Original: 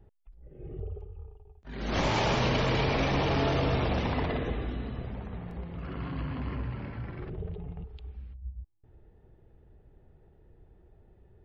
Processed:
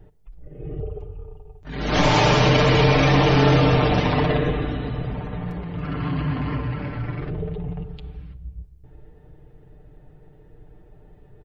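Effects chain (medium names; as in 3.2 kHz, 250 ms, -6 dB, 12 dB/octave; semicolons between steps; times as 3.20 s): comb 6.7 ms, depth 48%; simulated room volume 2300 m³, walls mixed, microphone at 0.42 m; trim +8.5 dB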